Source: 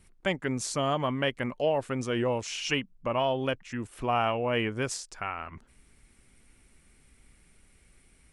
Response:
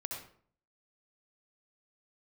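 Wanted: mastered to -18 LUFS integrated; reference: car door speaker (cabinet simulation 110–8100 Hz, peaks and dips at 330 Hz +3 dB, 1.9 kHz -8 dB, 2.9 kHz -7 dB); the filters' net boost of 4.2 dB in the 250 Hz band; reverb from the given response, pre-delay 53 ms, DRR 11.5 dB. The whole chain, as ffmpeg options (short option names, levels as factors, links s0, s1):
-filter_complex "[0:a]equalizer=f=250:t=o:g=4,asplit=2[s0][s1];[1:a]atrim=start_sample=2205,adelay=53[s2];[s1][s2]afir=irnorm=-1:irlink=0,volume=0.251[s3];[s0][s3]amix=inputs=2:normalize=0,highpass=110,equalizer=f=330:t=q:w=4:g=3,equalizer=f=1900:t=q:w=4:g=-8,equalizer=f=2900:t=q:w=4:g=-7,lowpass=f=8100:w=0.5412,lowpass=f=8100:w=1.3066,volume=3.55"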